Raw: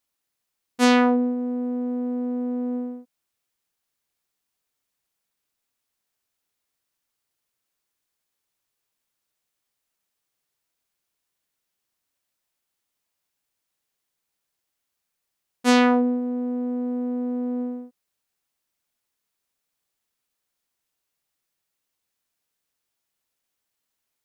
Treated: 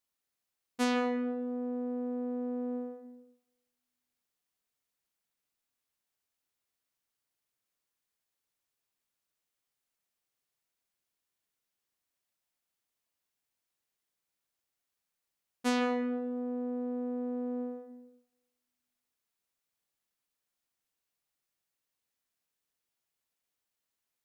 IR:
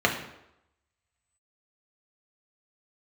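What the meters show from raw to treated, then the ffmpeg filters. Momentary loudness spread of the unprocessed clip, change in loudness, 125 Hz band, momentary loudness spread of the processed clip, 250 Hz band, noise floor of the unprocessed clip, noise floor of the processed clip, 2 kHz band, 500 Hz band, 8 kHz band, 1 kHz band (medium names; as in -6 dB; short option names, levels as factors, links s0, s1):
12 LU, -11.0 dB, no reading, 13 LU, -11.0 dB, -81 dBFS, under -85 dBFS, -12.0 dB, -8.5 dB, -11.5 dB, -12.0 dB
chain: -filter_complex "[0:a]acompressor=threshold=0.0891:ratio=4,asplit=2[s0][s1];[1:a]atrim=start_sample=2205,adelay=148[s2];[s1][s2]afir=irnorm=-1:irlink=0,volume=0.0631[s3];[s0][s3]amix=inputs=2:normalize=0,volume=0.473"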